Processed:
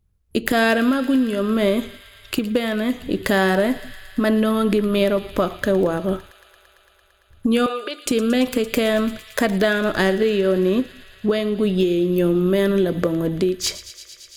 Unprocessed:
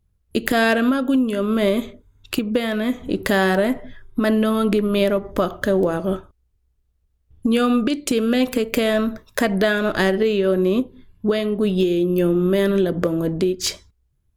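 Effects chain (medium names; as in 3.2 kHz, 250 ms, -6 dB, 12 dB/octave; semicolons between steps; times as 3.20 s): 7.66–8.06 s: elliptic band-pass 430–4300 Hz; feedback echo behind a high-pass 113 ms, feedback 85%, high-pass 2.1 kHz, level -14.5 dB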